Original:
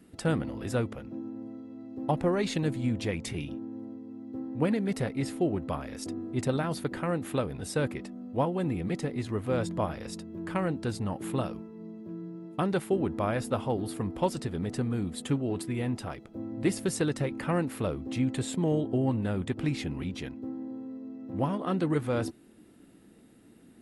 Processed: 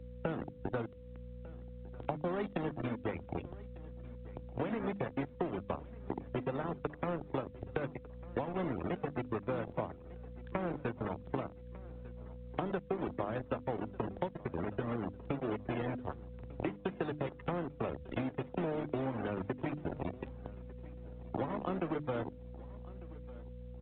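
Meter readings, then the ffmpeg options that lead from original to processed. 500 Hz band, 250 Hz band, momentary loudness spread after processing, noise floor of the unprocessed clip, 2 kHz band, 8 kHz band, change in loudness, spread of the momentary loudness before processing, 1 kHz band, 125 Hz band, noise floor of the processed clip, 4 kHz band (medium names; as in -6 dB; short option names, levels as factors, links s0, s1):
-6.0 dB, -9.0 dB, 13 LU, -55 dBFS, -6.5 dB, under -35 dB, -8.0 dB, 12 LU, -5.0 dB, -9.5 dB, -52 dBFS, -13.5 dB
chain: -filter_complex "[0:a]highshelf=f=3100:g=-10,aeval=exprs='0.2*(cos(1*acos(clip(val(0)/0.2,-1,1)))-cos(1*PI/2))+0.00562*(cos(5*acos(clip(val(0)/0.2,-1,1)))-cos(5*PI/2))+0.00708*(cos(6*acos(clip(val(0)/0.2,-1,1)))-cos(6*PI/2))+0.02*(cos(7*acos(clip(val(0)/0.2,-1,1)))-cos(7*PI/2))+0.00355*(cos(8*acos(clip(val(0)/0.2,-1,1)))-cos(8*PI/2))':c=same,lowshelf=f=150:g=-4,acrossover=split=110[s0][s1];[s1]acrusher=bits=5:mix=0:aa=0.000001[s2];[s0][s2]amix=inputs=2:normalize=0,afftdn=nr=25:nf=-40,aeval=exprs='val(0)+0.00112*(sin(2*PI*60*n/s)+sin(2*PI*2*60*n/s)/2+sin(2*PI*3*60*n/s)/3+sin(2*PI*4*60*n/s)/4+sin(2*PI*5*60*n/s)/5)':c=same,acompressor=threshold=0.00794:ratio=6,aeval=exprs='val(0)+0.000447*sin(2*PI*500*n/s)':c=same,bandreject=f=50:t=h:w=6,bandreject=f=100:t=h:w=6,bandreject=f=150:t=h:w=6,bandreject=f=200:t=h:w=6,bandreject=f=250:t=h:w=6,bandreject=f=300:t=h:w=6,acrossover=split=270|670[s3][s4][s5];[s3]acompressor=threshold=0.00251:ratio=4[s6];[s4]acompressor=threshold=0.00355:ratio=4[s7];[s5]acompressor=threshold=0.00224:ratio=4[s8];[s6][s7][s8]amix=inputs=3:normalize=0,aecho=1:1:1199|2398|3597:0.1|0.038|0.0144,volume=4.22" -ar 8000 -c:a pcm_mulaw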